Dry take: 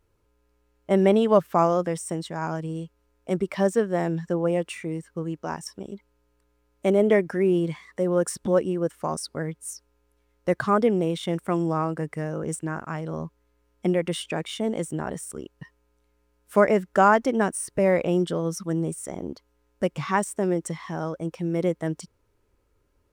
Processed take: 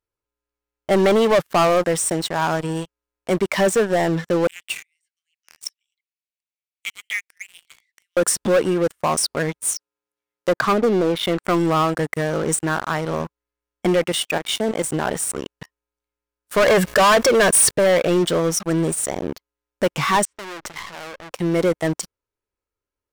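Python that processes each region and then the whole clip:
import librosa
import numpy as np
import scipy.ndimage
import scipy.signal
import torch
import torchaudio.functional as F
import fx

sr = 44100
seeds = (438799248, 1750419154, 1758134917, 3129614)

y = fx.chain(x, sr, fx.steep_highpass(hz=2100.0, slope=48),
    fx.high_shelf(hz=3400.0, db=-7.0), at=(4.47, 8.17))
y = fx.chain(y, sr, fx.highpass(hz=160.0, slope=12),
    fx.env_lowpass_down(base_hz=420.0, full_db=-16.0), at=(9.7, 11.44))
y = fx.chain(y, sr, fx.highpass(hz=110.0, slope=12),
    fx.level_steps(step_db=9), at=(14.06, 14.85))
y = fx.chain(y, sr, fx.comb(ms=1.8, depth=0.82),
    fx.env_flatten(amount_pct=50), at=(16.66, 17.71))
y = fx.chain(y, sr, fx.lowpass(hz=4600.0, slope=24),
    fx.tube_stage(drive_db=38.0, bias=0.45),
    fx.sustainer(db_per_s=43.0), at=(20.25, 21.31))
y = fx.low_shelf(y, sr, hz=460.0, db=-10.0)
y = fx.leveller(y, sr, passes=5)
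y = F.gain(torch.from_numpy(y), -4.0).numpy()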